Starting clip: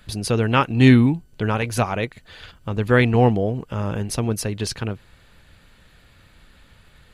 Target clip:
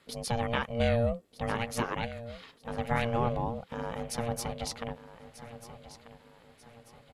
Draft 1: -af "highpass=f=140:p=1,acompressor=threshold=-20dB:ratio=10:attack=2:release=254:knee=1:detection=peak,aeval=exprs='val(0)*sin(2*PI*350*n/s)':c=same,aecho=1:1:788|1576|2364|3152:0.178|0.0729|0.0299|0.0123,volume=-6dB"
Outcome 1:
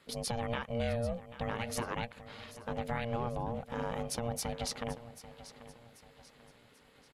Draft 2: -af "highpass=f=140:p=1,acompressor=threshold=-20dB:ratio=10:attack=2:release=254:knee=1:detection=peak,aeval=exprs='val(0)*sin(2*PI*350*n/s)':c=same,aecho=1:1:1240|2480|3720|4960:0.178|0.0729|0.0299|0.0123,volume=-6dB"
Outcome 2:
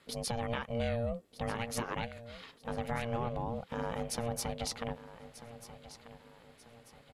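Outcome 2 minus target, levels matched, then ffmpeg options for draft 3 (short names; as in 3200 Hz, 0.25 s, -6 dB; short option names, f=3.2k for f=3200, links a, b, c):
compressor: peak gain reduction +7 dB
-af "highpass=f=140:p=1,acompressor=threshold=-12dB:ratio=10:attack=2:release=254:knee=1:detection=peak,aeval=exprs='val(0)*sin(2*PI*350*n/s)':c=same,aecho=1:1:1240|2480|3720|4960:0.178|0.0729|0.0299|0.0123,volume=-6dB"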